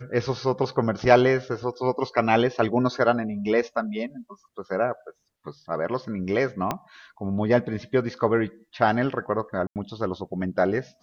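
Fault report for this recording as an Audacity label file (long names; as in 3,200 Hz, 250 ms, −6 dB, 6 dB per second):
6.710000	6.710000	click −11 dBFS
9.670000	9.760000	drop-out 88 ms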